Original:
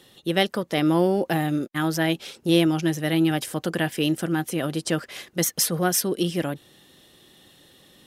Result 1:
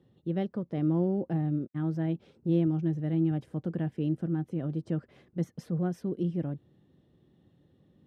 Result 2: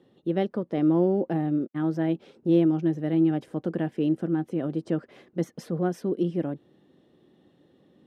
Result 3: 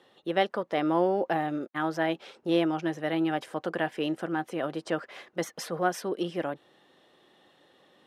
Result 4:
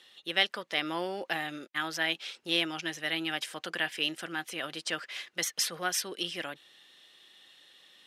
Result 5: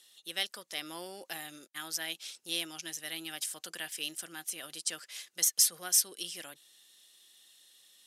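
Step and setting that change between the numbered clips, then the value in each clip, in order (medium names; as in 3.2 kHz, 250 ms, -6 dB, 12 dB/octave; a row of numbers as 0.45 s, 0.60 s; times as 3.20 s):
band-pass filter, frequency: 110 Hz, 270 Hz, 830 Hz, 2.6 kHz, 7.8 kHz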